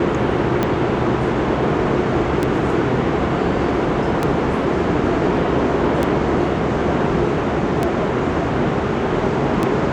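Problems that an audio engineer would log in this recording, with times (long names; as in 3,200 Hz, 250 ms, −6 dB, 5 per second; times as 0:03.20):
scratch tick 33 1/3 rpm −6 dBFS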